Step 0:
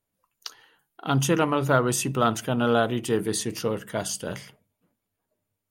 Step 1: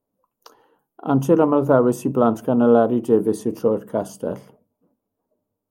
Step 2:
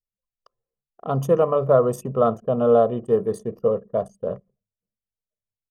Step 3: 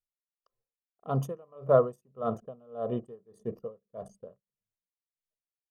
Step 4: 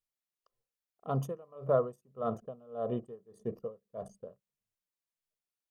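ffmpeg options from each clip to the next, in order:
-af "equalizer=f=250:t=o:w=1:g=10,equalizer=f=500:t=o:w=1:g=9,equalizer=f=1k:t=o:w=1:g=7,equalizer=f=2k:t=o:w=1:g=-11,equalizer=f=4k:t=o:w=1:g=-10,equalizer=f=8k:t=o:w=1:g=-7,volume=-2.5dB"
-af "anlmdn=6.31,aecho=1:1:1.7:0.82,volume=-4dB"
-af "aeval=exprs='val(0)*pow(10,-33*(0.5-0.5*cos(2*PI*1.7*n/s))/20)':c=same,volume=-4dB"
-af "acompressor=threshold=-33dB:ratio=1.5"

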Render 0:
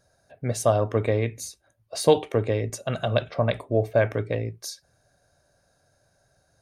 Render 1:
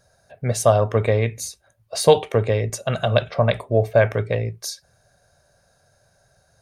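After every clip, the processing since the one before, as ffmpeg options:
-af "equalizer=f=300:w=3.4:g=-10.5,volume=5.5dB"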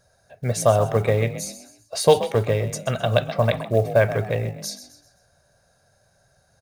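-filter_complex "[0:a]asplit=5[a][b][c][d][e];[b]adelay=129,afreqshift=45,volume=-12.5dB[f];[c]adelay=258,afreqshift=90,volume=-20.5dB[g];[d]adelay=387,afreqshift=135,volume=-28.4dB[h];[e]adelay=516,afreqshift=180,volume=-36.4dB[i];[a][f][g][h][i]amix=inputs=5:normalize=0,acrusher=bits=8:mode=log:mix=0:aa=0.000001,volume=-1.5dB"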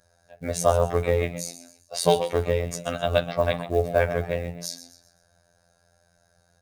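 -af "afftfilt=real='hypot(re,im)*cos(PI*b)':imag='0':win_size=2048:overlap=0.75,volume=1dB"

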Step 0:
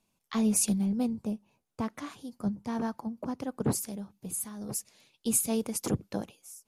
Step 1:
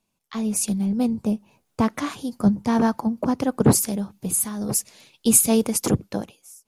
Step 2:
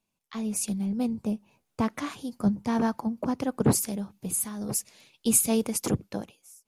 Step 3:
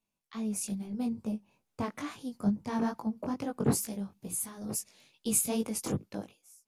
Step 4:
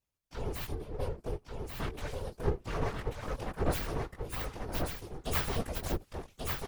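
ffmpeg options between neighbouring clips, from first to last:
-af "dynaudnorm=f=230:g=9:m=13dB"
-af "equalizer=f=2.4k:t=o:w=0.77:g=2,volume=-6dB"
-af "flanger=delay=18:depth=3.5:speed=2.3,volume=-2.5dB"
-af "aeval=exprs='abs(val(0))':c=same,afftfilt=real='hypot(re,im)*cos(2*PI*random(0))':imag='hypot(re,im)*sin(2*PI*random(1))':win_size=512:overlap=0.75,aecho=1:1:1137:0.631,volume=5.5dB"

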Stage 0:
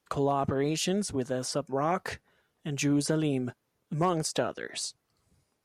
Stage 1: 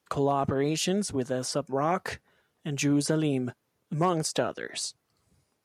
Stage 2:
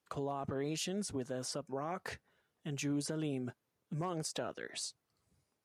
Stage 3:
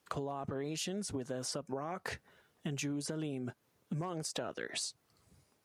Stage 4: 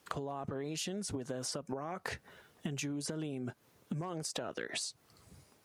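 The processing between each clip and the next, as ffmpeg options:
-af "highpass=57,volume=1.5dB"
-af "alimiter=limit=-20dB:level=0:latency=1:release=130,volume=-8dB"
-af "acompressor=threshold=-45dB:ratio=6,volume=9.5dB"
-af "acompressor=threshold=-43dB:ratio=6,volume=7.5dB"

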